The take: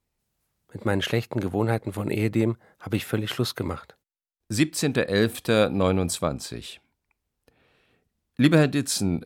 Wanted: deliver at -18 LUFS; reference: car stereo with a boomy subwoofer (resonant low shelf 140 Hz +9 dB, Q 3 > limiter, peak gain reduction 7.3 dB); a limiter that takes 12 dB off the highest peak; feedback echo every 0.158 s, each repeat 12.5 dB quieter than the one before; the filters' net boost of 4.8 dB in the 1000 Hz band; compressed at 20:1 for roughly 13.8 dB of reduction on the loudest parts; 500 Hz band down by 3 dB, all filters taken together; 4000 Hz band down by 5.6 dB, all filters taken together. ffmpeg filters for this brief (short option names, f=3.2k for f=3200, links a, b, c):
-af "equalizer=f=500:t=o:g=-4.5,equalizer=f=1k:t=o:g=8.5,equalizer=f=4k:t=o:g=-7.5,acompressor=threshold=-26dB:ratio=20,alimiter=level_in=1dB:limit=-24dB:level=0:latency=1,volume=-1dB,lowshelf=f=140:t=q:w=3:g=9,aecho=1:1:158|316|474:0.237|0.0569|0.0137,volume=14.5dB,alimiter=limit=-8.5dB:level=0:latency=1"